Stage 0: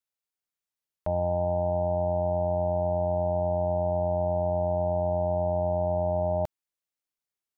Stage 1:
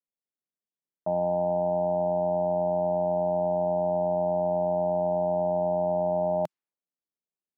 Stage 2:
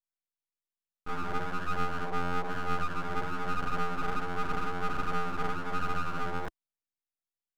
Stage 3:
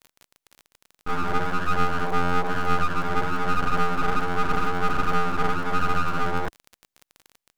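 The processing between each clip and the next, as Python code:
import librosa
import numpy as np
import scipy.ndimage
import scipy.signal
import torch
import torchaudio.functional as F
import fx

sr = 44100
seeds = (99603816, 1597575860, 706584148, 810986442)

y1 = fx.env_lowpass(x, sr, base_hz=490.0, full_db=-24.0)
y1 = scipy.signal.sosfilt(scipy.signal.cheby1(3, 1.0, 170.0, 'highpass', fs=sr, output='sos'), y1)
y1 = F.gain(torch.from_numpy(y1), 2.0).numpy()
y2 = fx.chorus_voices(y1, sr, voices=2, hz=1.1, base_ms=27, depth_ms=3.0, mix_pct=65)
y2 = np.abs(y2)
y3 = fx.dmg_crackle(y2, sr, seeds[0], per_s=31.0, level_db=-40.0)
y3 = F.gain(torch.from_numpy(y3), 8.5).numpy()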